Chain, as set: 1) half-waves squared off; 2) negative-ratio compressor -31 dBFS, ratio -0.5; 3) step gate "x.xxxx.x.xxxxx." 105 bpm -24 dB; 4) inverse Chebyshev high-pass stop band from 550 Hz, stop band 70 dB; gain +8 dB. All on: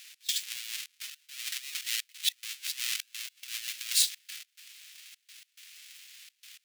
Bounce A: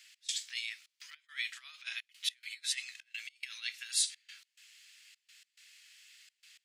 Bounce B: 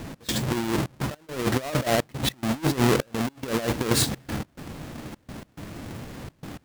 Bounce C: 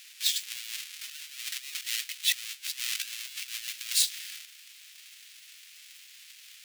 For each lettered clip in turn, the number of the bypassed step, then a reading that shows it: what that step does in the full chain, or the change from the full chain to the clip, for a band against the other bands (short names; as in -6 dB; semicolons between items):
1, distortion -5 dB; 4, 1 kHz band +30.0 dB; 3, momentary loudness spread change -1 LU